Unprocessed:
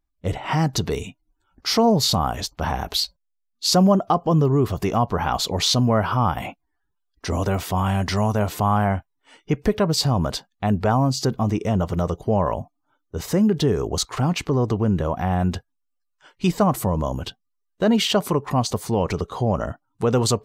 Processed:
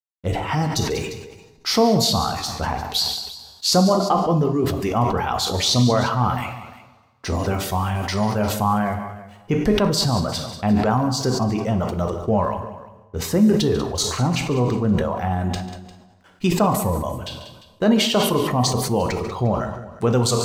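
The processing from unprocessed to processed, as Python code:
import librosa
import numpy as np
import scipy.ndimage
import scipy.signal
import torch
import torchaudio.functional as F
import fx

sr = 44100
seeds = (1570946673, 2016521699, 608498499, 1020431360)

p1 = fx.backlash(x, sr, play_db=-45.0)
p2 = fx.dereverb_blind(p1, sr, rt60_s=1.2)
p3 = p2 + fx.echo_multitap(p2, sr, ms=(142, 190, 350), db=(-16.0, -15.0, -19.5), dry=0)
p4 = fx.rev_double_slope(p3, sr, seeds[0], early_s=0.49, late_s=2.0, knee_db=-18, drr_db=5.5)
y = fx.sustainer(p4, sr, db_per_s=49.0)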